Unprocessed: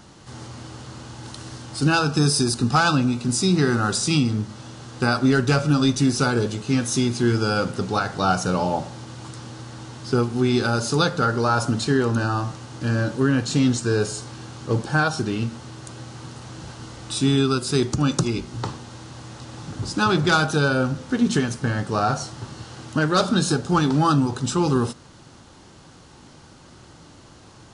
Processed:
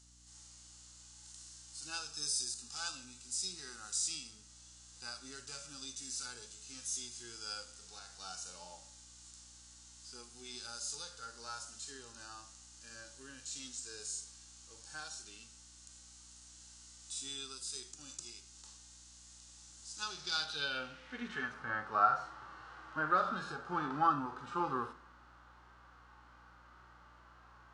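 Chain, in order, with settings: band-pass sweep 7.4 kHz -> 1.3 kHz, 19.94–21.56 s; hum 60 Hz, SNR 27 dB; harmonic-percussive split percussive -16 dB; on a send: reverberation RT60 0.85 s, pre-delay 53 ms, DRR 19 dB; on the sum: trim +1 dB

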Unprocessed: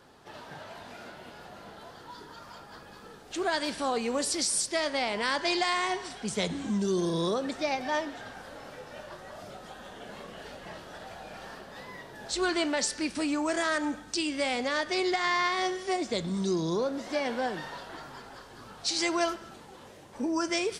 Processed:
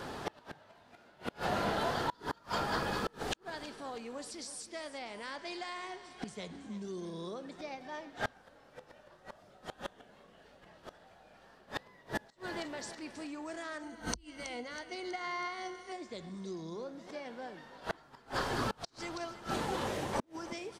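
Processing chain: inverted gate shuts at -31 dBFS, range -28 dB; treble shelf 3.9 kHz -4 dB; feedback delay 323 ms, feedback 52%, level -15 dB; inverted gate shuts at -36 dBFS, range -30 dB; 13.82–15.92 s: rippled EQ curve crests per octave 1.9, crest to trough 11 dB; trim +14.5 dB

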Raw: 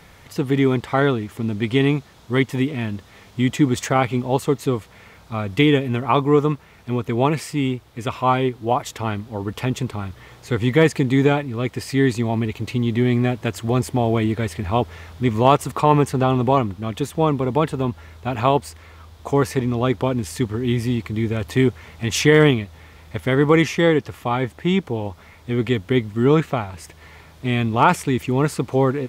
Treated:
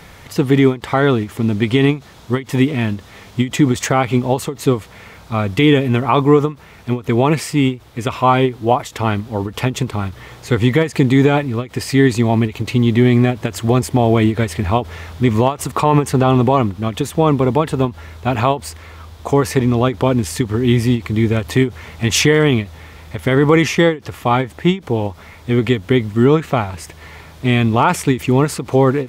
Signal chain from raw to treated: loudness maximiser +8 dB; endings held to a fixed fall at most 230 dB/s; trim -1 dB

